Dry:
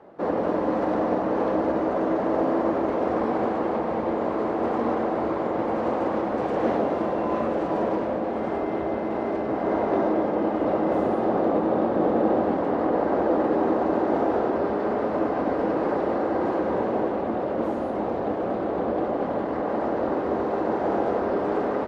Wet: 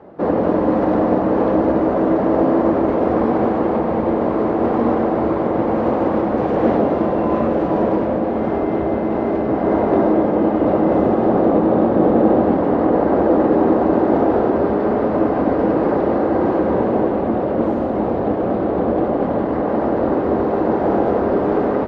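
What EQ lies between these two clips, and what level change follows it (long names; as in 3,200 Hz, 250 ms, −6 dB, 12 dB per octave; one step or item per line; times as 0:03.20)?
high-frequency loss of the air 81 metres
low-shelf EQ 210 Hz +3.5 dB
low-shelf EQ 440 Hz +5 dB
+4.5 dB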